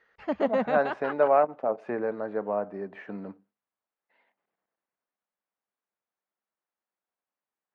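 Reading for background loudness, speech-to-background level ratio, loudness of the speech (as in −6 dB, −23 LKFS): −31.0 LKFS, 3.0 dB, −28.0 LKFS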